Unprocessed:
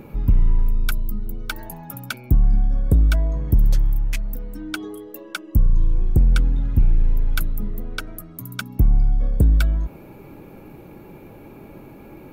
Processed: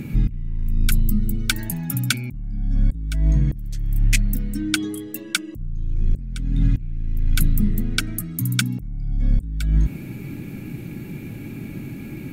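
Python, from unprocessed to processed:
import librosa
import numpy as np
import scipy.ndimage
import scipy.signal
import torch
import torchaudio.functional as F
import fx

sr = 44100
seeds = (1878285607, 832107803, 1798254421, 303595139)

y = fx.graphic_eq_10(x, sr, hz=(125, 250, 500, 1000, 2000, 4000, 8000), db=(9, 7, -9, -11, 7, 3, 10))
y = fx.over_compress(y, sr, threshold_db=-18.0, ratio=-0.5)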